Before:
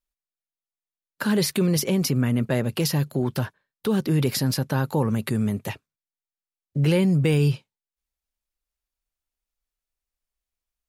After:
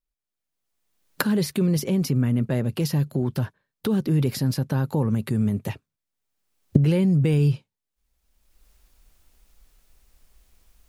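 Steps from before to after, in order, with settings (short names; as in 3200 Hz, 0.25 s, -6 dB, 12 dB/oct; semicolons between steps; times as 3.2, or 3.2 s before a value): recorder AGC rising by 26 dB/s; low shelf 410 Hz +8.5 dB; gain -6.5 dB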